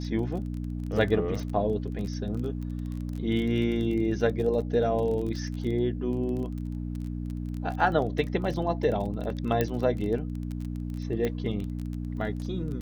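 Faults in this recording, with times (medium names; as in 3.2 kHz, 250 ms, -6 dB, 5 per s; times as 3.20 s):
crackle 24 per s -33 dBFS
hum 60 Hz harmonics 5 -33 dBFS
9.61 s: pop -12 dBFS
11.25 s: pop -16 dBFS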